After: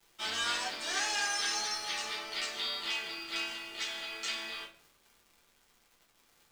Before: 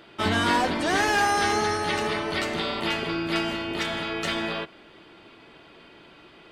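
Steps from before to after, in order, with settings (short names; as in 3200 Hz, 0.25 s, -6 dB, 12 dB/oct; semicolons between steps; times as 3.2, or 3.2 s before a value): LPF 7600 Hz 24 dB/oct; differentiator; crossover distortion -55.5 dBFS; crackle 260/s -51 dBFS; shoebox room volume 33 m³, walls mixed, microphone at 0.78 m; gain -1 dB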